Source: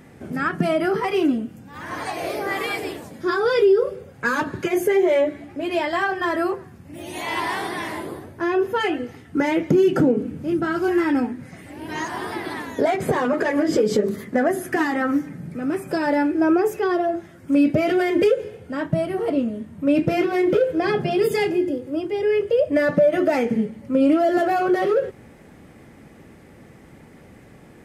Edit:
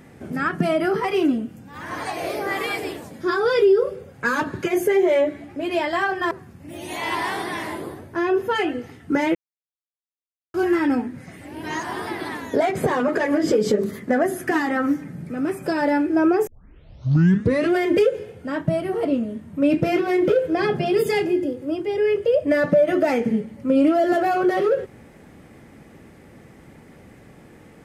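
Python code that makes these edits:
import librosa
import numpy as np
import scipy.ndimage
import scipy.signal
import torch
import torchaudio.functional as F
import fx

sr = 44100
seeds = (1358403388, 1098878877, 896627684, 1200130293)

y = fx.edit(x, sr, fx.cut(start_s=6.31, length_s=0.25),
    fx.silence(start_s=9.6, length_s=1.19),
    fx.tape_start(start_s=16.72, length_s=1.29), tone=tone)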